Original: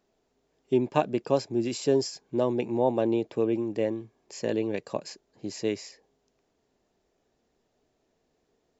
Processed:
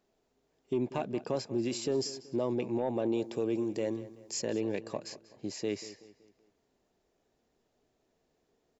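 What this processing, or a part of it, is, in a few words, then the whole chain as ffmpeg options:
soft clipper into limiter: -filter_complex "[0:a]asettb=1/sr,asplit=3[a][b][c];[a]atrim=end=3.134[d];[b]atrim=start=3.13:end=4.42,asetpts=PTS-STARTPTS,afade=t=in:d=0.004:c=qsin,afade=t=out:st=1.286:d=0.004:c=qsin,bass=f=250:g=0,treble=f=4k:g=11[e];[c]atrim=start=4.416[f];[d][e]acrossfade=d=0.004:c1=hsin:c2=qsin[g];[g][f]acrossfade=d=0.004:c1=qsin:c2=hsin,asoftclip=type=tanh:threshold=-11.5dB,alimiter=limit=-20dB:level=0:latency=1:release=49,asplit=2[h][i];[i]adelay=189,lowpass=f=4.2k:p=1,volume=-16dB,asplit=2[j][k];[k]adelay=189,lowpass=f=4.2k:p=1,volume=0.43,asplit=2[l][m];[m]adelay=189,lowpass=f=4.2k:p=1,volume=0.43,asplit=2[n][o];[o]adelay=189,lowpass=f=4.2k:p=1,volume=0.43[p];[h][j][l][n][p]amix=inputs=5:normalize=0,volume=-2.5dB"

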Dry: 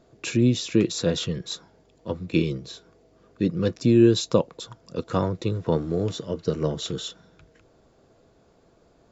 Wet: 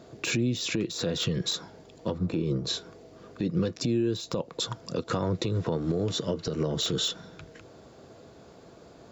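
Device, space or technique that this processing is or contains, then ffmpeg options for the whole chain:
broadcast voice chain: -filter_complex "[0:a]highpass=74,deesser=0.8,acompressor=threshold=-29dB:ratio=4,equalizer=f=4.2k:t=o:w=0.77:g=2,alimiter=level_in=2.5dB:limit=-24dB:level=0:latency=1:release=124,volume=-2.5dB,asettb=1/sr,asplit=3[a][b][c];[a]atrim=end=2.184[d];[b]atrim=start=2.18:end=2.67,asetpts=PTS-STARTPTS,afade=t=in:d=0.004:c=qsin,afade=t=out:st=0.486:d=0.004:c=qsin,highshelf=f=1.7k:t=q:w=1.5:g=-8.5[e];[c]atrim=start=2.666[f];[d][e]acrossfade=d=0.004:c1=hsin:c2=qsin[g];[g][f]acrossfade=d=0.004:c1=qsin:c2=hsin,volume=8.5dB"

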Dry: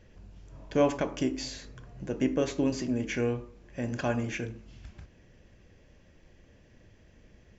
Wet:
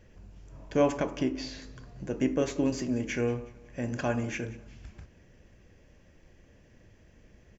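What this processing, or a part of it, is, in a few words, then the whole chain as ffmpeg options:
exciter from parts: -filter_complex "[0:a]asplit=2[a][b];[b]highpass=f=3.5k:w=0.5412,highpass=f=3.5k:w=1.3066,asoftclip=type=tanh:threshold=-35dB,volume=-8dB[c];[a][c]amix=inputs=2:normalize=0,asettb=1/sr,asplit=3[d][e][f];[d]atrim=end=1.174[g];[e]atrim=start=1.17:end=1.62,asetpts=PTS-STARTPTS,afade=t=in:d=0.004:c=qsin,afade=t=out:st=0.446:d=0.004:c=qsin,lowpass=f=5.3k:w=0.5412,lowpass=f=5.3k:w=1.3066[h];[f]atrim=start=1.616[i];[g][h]acrossfade=d=0.004:c1=hsin:c2=qsin[j];[j][i]acrossfade=d=0.004:c1=qsin:c2=hsin,aecho=1:1:184|368|552:0.1|0.042|0.0176"

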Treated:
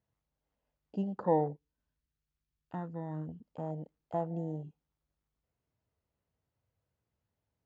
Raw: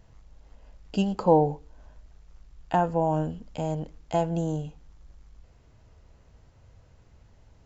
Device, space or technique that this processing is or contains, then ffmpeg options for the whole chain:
over-cleaned archive recording: -filter_complex "[0:a]highpass=100,lowpass=5.8k,afwtdn=0.0251,asettb=1/sr,asplit=3[a][b][c];[a]atrim=end=1.534[d];[b]atrim=start=1.53:end=3.29,asetpts=PTS-STARTPTS,afade=t=in:d=0.004:c=qsin,afade=t=out:st=1.756:d=0.004:c=qsin,equalizer=f=700:w=0.9:g=-13.5[e];[c]atrim=start=3.286[f];[d][e]acrossfade=d=0.004:c1=hsin:c2=qsin[g];[g][f]acrossfade=d=0.004:c1=qsin:c2=hsin,volume=-8.5dB"

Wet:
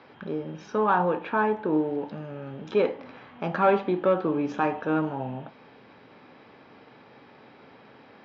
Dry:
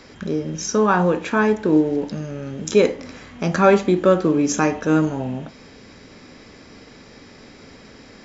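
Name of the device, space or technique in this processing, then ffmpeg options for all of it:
overdrive pedal into a guitar cabinet: -filter_complex "[0:a]asettb=1/sr,asplit=3[a][b][c];[a]atrim=end=1.174[d];[b]atrim=start=1.17:end=1.73,asetpts=PTS-STARTPTS,afade=t=in:d=0.004:c=qsin,afade=t=out:st=0.556:d=0.004:c=qsin,highshelf=f=4.1k:g=-6[e];[c]atrim=start=1.726[f];[d][e]acrossfade=d=0.004:c1=hsin:c2=qsin[g];[g][f]acrossfade=d=0.004:c1=qsin:c2=hsin,asplit=2[h][i];[i]highpass=f=720:p=1,volume=11dB,asoftclip=type=tanh:threshold=-2dB[j];[h][j]amix=inputs=2:normalize=0,lowpass=f=2k:p=1,volume=-6dB,highpass=98,equalizer=f=130:t=q:w=4:g=7,equalizer=f=850:t=q:w=4:g=6,equalizer=f=2k:t=q:w=4:g=-5,lowpass=f=3.7k:w=0.5412,lowpass=f=3.7k:w=1.3066,volume=-8.5dB"

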